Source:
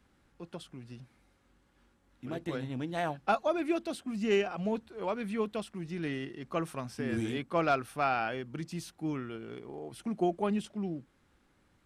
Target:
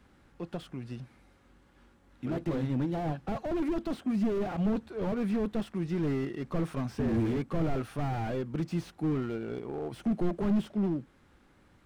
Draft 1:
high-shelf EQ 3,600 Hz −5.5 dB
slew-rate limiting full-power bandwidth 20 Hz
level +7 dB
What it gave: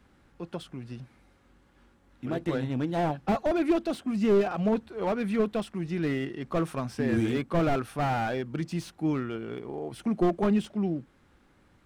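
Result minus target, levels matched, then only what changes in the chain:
slew-rate limiting: distortion −7 dB
change: slew-rate limiting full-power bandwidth 6.5 Hz

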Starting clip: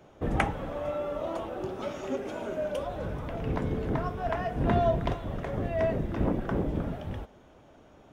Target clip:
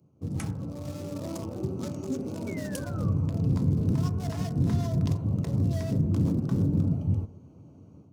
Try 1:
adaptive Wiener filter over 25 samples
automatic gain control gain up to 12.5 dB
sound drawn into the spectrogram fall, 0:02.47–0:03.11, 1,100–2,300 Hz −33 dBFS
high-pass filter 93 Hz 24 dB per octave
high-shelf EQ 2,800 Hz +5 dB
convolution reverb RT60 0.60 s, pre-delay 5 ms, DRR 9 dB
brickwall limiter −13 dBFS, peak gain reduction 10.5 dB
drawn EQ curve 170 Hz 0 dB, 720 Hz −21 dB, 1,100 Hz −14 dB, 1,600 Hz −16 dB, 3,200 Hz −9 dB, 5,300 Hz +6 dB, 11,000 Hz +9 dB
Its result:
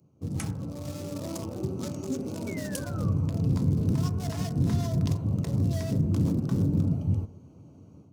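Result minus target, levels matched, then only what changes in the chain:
4,000 Hz band +3.0 dB
remove: high-shelf EQ 2,800 Hz +5 dB

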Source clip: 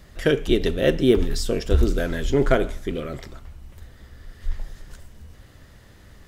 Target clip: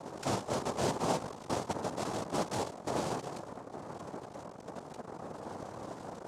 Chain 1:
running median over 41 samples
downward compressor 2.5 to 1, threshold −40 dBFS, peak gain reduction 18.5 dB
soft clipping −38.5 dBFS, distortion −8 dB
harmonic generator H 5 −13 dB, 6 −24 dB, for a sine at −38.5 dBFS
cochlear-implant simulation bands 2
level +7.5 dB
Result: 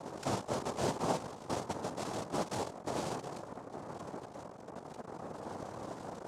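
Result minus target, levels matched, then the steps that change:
downward compressor: peak gain reduction +6.5 dB
change: downward compressor 2.5 to 1, threshold −29.5 dBFS, peak gain reduction 12 dB

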